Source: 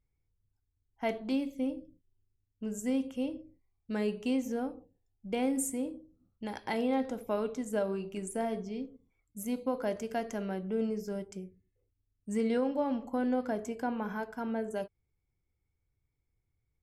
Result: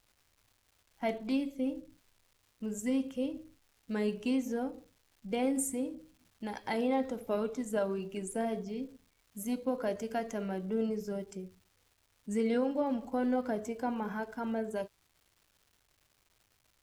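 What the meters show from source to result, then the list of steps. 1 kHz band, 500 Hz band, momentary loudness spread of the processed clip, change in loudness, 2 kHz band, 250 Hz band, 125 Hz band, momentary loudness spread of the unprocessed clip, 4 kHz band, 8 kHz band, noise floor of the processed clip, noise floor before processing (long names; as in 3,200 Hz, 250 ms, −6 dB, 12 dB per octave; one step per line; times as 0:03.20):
−0.5 dB, 0.0 dB, 12 LU, −0.5 dB, −0.5 dB, −0.5 dB, −0.5 dB, 12 LU, −0.5 dB, 0.0 dB, −73 dBFS, −81 dBFS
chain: spectral magnitudes quantised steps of 15 dB
surface crackle 550 per second −56 dBFS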